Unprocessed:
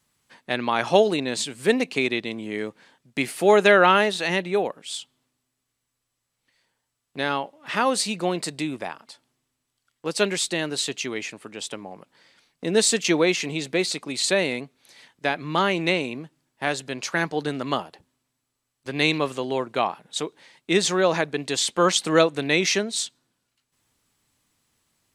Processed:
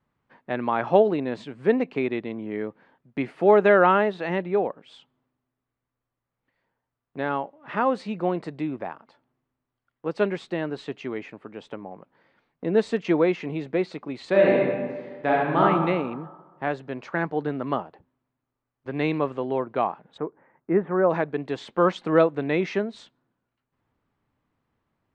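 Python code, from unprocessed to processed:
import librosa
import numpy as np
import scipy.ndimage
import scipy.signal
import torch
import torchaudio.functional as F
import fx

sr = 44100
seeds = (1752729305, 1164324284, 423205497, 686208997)

y = fx.reverb_throw(x, sr, start_s=14.29, length_s=1.32, rt60_s=1.5, drr_db=-4.5)
y = fx.cheby2_lowpass(y, sr, hz=4500.0, order=4, stop_db=50, at=(20.16, 21.09), fade=0.02)
y = scipy.signal.sosfilt(scipy.signal.butter(2, 1400.0, 'lowpass', fs=sr, output='sos'), y)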